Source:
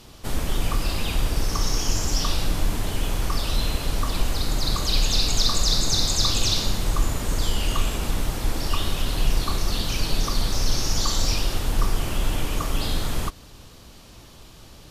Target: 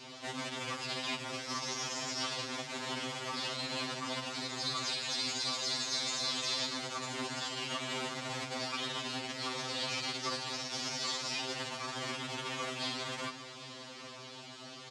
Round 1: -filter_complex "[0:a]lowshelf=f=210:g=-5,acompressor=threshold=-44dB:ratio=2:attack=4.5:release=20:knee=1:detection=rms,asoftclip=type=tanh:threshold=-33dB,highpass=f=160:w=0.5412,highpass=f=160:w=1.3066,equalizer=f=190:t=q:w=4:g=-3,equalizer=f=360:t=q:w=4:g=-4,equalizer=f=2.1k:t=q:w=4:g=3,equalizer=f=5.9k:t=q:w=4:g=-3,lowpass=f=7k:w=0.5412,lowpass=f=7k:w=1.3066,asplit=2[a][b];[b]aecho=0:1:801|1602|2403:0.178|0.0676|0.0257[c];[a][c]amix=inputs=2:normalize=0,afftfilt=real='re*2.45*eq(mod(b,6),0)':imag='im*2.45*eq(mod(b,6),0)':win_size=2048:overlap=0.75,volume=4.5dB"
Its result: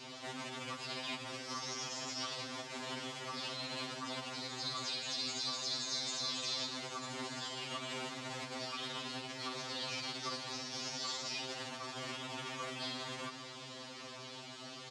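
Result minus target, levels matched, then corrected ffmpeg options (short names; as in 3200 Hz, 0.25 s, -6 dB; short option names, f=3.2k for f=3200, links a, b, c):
compressor: peak gain reduction +14.5 dB
-filter_complex "[0:a]lowshelf=f=210:g=-5,asoftclip=type=tanh:threshold=-33dB,highpass=f=160:w=0.5412,highpass=f=160:w=1.3066,equalizer=f=190:t=q:w=4:g=-3,equalizer=f=360:t=q:w=4:g=-4,equalizer=f=2.1k:t=q:w=4:g=3,equalizer=f=5.9k:t=q:w=4:g=-3,lowpass=f=7k:w=0.5412,lowpass=f=7k:w=1.3066,asplit=2[a][b];[b]aecho=0:1:801|1602|2403:0.178|0.0676|0.0257[c];[a][c]amix=inputs=2:normalize=0,afftfilt=real='re*2.45*eq(mod(b,6),0)':imag='im*2.45*eq(mod(b,6),0)':win_size=2048:overlap=0.75,volume=4.5dB"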